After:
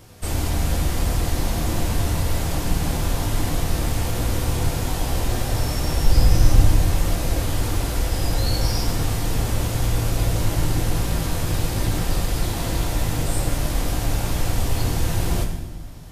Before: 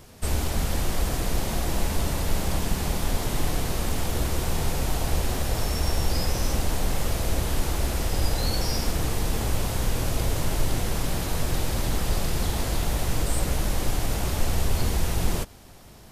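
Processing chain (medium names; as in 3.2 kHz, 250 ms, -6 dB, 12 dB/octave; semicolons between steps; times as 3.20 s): 6.03–6.68 s: bass shelf 150 Hz +10 dB; reverberation RT60 1.3 s, pre-delay 5 ms, DRR 2 dB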